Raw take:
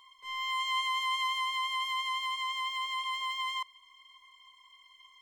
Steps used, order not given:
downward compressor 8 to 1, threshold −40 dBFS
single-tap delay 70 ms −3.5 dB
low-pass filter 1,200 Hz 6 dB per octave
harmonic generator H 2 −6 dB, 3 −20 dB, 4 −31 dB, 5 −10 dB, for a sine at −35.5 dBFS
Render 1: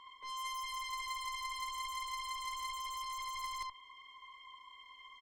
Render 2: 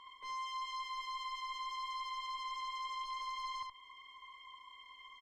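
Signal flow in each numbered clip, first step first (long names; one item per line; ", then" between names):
low-pass filter, then downward compressor, then single-tap delay, then harmonic generator
downward compressor, then low-pass filter, then harmonic generator, then single-tap delay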